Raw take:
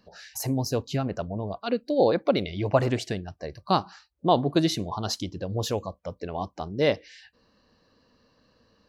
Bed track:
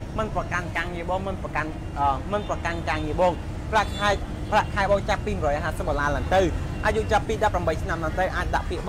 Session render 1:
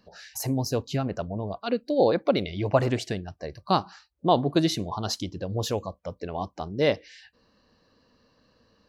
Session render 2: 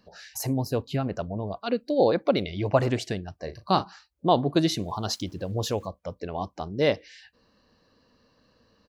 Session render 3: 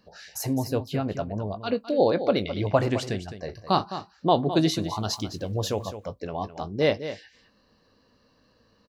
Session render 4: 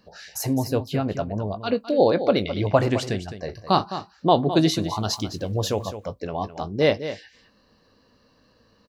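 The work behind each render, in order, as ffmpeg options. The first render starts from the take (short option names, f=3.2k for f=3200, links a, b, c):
-af anull
-filter_complex "[0:a]asettb=1/sr,asplit=3[a][b][c];[a]atrim=end=0.534[d];[b]atrim=start=0.53:end=1.03,asetpts=PTS-STARTPTS,afade=t=in:d=0.004:c=qsin,afade=t=out:st=0.496:d=0.004:c=qsin,equalizer=f=6.1k:t=o:w=0.63:g=-11[e];[c]atrim=start=1.026[f];[d][e]acrossfade=d=0.004:c1=hsin:c2=qsin[g];[g][f]acrossfade=d=0.004:c1=qsin:c2=hsin,asplit=3[h][i][j];[h]afade=t=out:st=3.43:d=0.02[k];[i]asplit=2[l][m];[m]adelay=37,volume=-10.5dB[n];[l][n]amix=inputs=2:normalize=0,afade=t=in:st=3.43:d=0.02,afade=t=out:st=3.83:d=0.02[o];[j]afade=t=in:st=3.83:d=0.02[p];[k][o][p]amix=inputs=3:normalize=0,asettb=1/sr,asplit=3[q][r][s];[q]atrim=end=4.814[t];[r]atrim=start=4.81:end=5.87,asetpts=PTS-STARTPTS,afade=t=in:d=0.004:c=qsin,afade=t=out:st=1.056:d=0.004:c=qsin,aeval=exprs='val(0)*gte(abs(val(0)),0.00224)':c=same[u];[s]atrim=start=5.866[v];[t][u]acrossfade=d=0.004:c1=hsin:c2=qsin[w];[w][v]acrossfade=d=0.004:c1=qsin:c2=hsin"
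-filter_complex "[0:a]asplit=2[a][b];[b]adelay=19,volume=-13dB[c];[a][c]amix=inputs=2:normalize=0,aecho=1:1:210:0.266"
-af "volume=3dB"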